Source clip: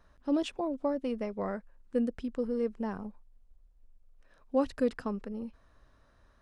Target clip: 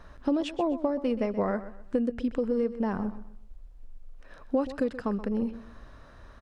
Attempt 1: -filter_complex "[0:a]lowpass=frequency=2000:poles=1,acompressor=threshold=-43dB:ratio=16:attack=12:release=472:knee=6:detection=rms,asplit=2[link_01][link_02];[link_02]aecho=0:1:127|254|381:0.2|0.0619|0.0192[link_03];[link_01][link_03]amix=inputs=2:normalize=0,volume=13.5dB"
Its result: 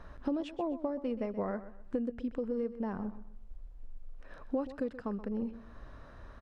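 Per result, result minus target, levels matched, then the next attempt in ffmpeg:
downward compressor: peak gain reduction +7 dB; 4,000 Hz band −4.0 dB
-filter_complex "[0:a]lowpass=frequency=2000:poles=1,acompressor=threshold=-35.5dB:ratio=16:attack=12:release=472:knee=6:detection=rms,asplit=2[link_01][link_02];[link_02]aecho=0:1:127|254|381:0.2|0.0619|0.0192[link_03];[link_01][link_03]amix=inputs=2:normalize=0,volume=13.5dB"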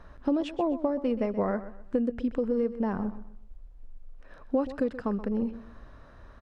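4,000 Hz band −4.0 dB
-filter_complex "[0:a]lowpass=frequency=5000:poles=1,acompressor=threshold=-35.5dB:ratio=16:attack=12:release=472:knee=6:detection=rms,asplit=2[link_01][link_02];[link_02]aecho=0:1:127|254|381:0.2|0.0619|0.0192[link_03];[link_01][link_03]amix=inputs=2:normalize=0,volume=13.5dB"

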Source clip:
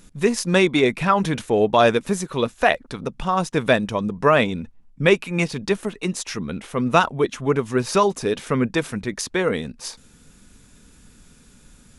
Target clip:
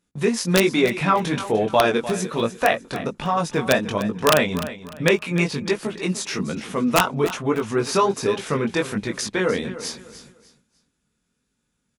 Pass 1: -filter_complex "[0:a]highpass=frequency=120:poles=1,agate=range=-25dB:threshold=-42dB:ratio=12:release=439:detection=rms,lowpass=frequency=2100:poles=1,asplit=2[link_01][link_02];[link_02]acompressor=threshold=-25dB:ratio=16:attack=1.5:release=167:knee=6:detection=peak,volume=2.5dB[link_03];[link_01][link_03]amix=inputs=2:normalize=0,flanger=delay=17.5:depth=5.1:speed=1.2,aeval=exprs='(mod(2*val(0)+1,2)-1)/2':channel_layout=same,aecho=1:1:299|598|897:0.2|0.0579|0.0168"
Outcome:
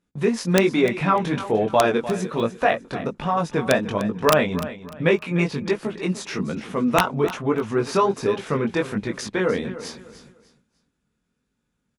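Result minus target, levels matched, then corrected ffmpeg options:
8,000 Hz band −5.5 dB
-filter_complex "[0:a]highpass=frequency=120:poles=1,agate=range=-25dB:threshold=-42dB:ratio=12:release=439:detection=rms,lowpass=frequency=7800:poles=1,asplit=2[link_01][link_02];[link_02]acompressor=threshold=-25dB:ratio=16:attack=1.5:release=167:knee=6:detection=peak,volume=2.5dB[link_03];[link_01][link_03]amix=inputs=2:normalize=0,flanger=delay=17.5:depth=5.1:speed=1.2,aeval=exprs='(mod(2*val(0)+1,2)-1)/2':channel_layout=same,aecho=1:1:299|598|897:0.2|0.0579|0.0168"

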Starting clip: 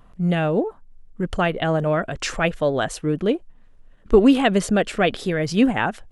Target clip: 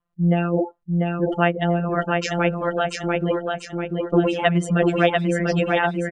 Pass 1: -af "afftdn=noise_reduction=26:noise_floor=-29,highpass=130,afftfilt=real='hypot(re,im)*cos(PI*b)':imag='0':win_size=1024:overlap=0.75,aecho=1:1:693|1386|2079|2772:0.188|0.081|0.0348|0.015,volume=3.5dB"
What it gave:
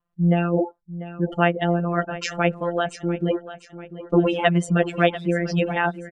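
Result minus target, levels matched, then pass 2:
echo-to-direct −11.5 dB
-af "afftdn=noise_reduction=26:noise_floor=-29,highpass=130,afftfilt=real='hypot(re,im)*cos(PI*b)':imag='0':win_size=1024:overlap=0.75,aecho=1:1:693|1386|2079|2772|3465|4158:0.708|0.304|0.131|0.0563|0.0242|0.0104,volume=3.5dB"

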